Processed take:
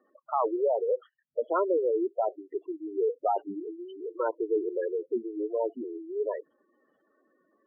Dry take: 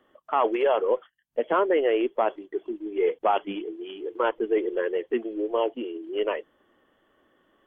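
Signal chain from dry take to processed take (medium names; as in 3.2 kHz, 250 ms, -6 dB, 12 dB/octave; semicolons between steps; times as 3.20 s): spectral gate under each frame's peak -10 dB strong; high-pass 120 Hz; trim -3 dB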